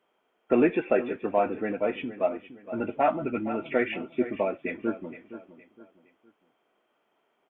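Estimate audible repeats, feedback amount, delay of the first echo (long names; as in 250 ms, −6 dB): 3, 34%, 465 ms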